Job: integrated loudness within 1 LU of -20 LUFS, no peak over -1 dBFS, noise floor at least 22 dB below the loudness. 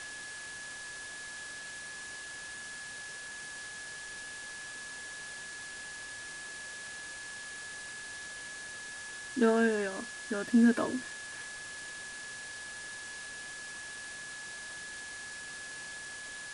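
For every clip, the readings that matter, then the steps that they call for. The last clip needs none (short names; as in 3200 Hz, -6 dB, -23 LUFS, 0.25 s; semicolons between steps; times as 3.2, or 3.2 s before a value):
steady tone 1700 Hz; tone level -43 dBFS; noise floor -44 dBFS; noise floor target -59 dBFS; loudness -37.0 LUFS; peak -15.5 dBFS; loudness target -20.0 LUFS
-> notch 1700 Hz, Q 30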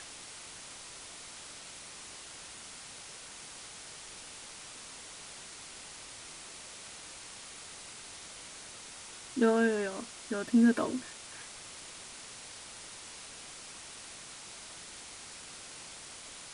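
steady tone none; noise floor -48 dBFS; noise floor target -60 dBFS
-> denoiser 12 dB, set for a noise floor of -48 dBFS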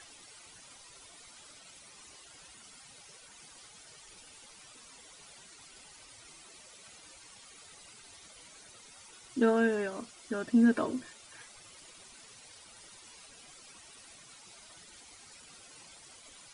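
noise floor -55 dBFS; loudness -29.5 LUFS; peak -15.5 dBFS; loudness target -20.0 LUFS
-> gain +9.5 dB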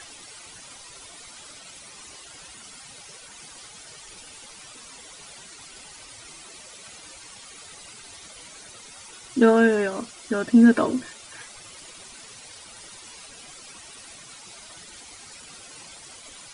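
loudness -20.0 LUFS; peak -6.0 dBFS; noise floor -45 dBFS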